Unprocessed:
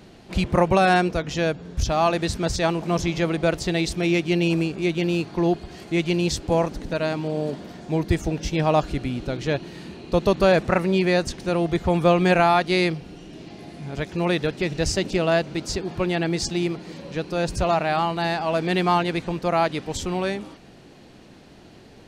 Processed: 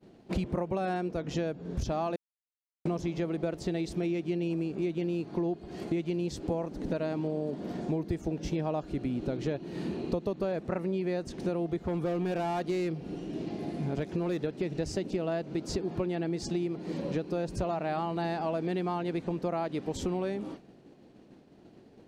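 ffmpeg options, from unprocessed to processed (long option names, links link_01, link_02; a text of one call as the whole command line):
ffmpeg -i in.wav -filter_complex "[0:a]asettb=1/sr,asplit=3[link_01][link_02][link_03];[link_01]atrim=end=11.824[link_04];[link_02]atrim=start=11.82:end=14.39,asetpts=PTS-STARTPTS,afade=type=in:duration=0.004:curve=qsin,afade=type=out:start_time=2.566:duration=0.004:curve=qsin,asoftclip=type=hard:threshold=-18.5dB[link_05];[link_03]atrim=start=14.386[link_06];[link_04][link_05]acrossfade=duration=0.004:curve1=hsin:curve2=qsin[link_07];[link_07][link_06]acrossfade=duration=0.004:curve1=qsin:curve2=hsin,asplit=3[link_08][link_09][link_10];[link_08]atrim=end=2.16,asetpts=PTS-STARTPTS,afade=type=out:start_time=2.156:duration=0.004:curve=hsin[link_11];[link_09]atrim=start=2.16:end=2.85,asetpts=PTS-STARTPTS,volume=0[link_12];[link_10]atrim=start=2.85,asetpts=PTS-STARTPTS,afade=type=in:duration=0.004:curve=hsin[link_13];[link_11][link_12][link_13]concat=n=3:v=0:a=1,agate=range=-33dB:threshold=-38dB:ratio=3:detection=peak,equalizer=frequency=310:width=0.39:gain=11.5,acompressor=threshold=-24dB:ratio=10,volume=-4.5dB" out.wav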